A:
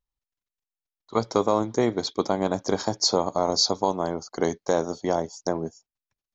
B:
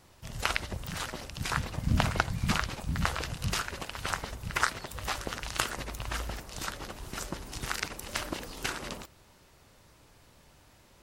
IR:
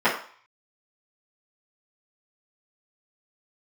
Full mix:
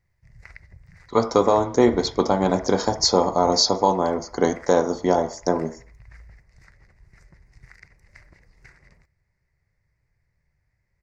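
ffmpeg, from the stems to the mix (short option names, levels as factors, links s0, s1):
-filter_complex "[0:a]volume=1.33,asplit=2[s0][s1];[s1]volume=0.075[s2];[1:a]firequalizer=gain_entry='entry(140,0);entry(260,-17);entry(380,-11);entry(1300,-14);entry(2000,4);entry(3100,-29);entry(4700,-11);entry(11000,-25)':delay=0.05:min_phase=1,volume=0.282[s3];[2:a]atrim=start_sample=2205[s4];[s2][s4]afir=irnorm=-1:irlink=0[s5];[s0][s3][s5]amix=inputs=3:normalize=0,lowshelf=f=140:g=3"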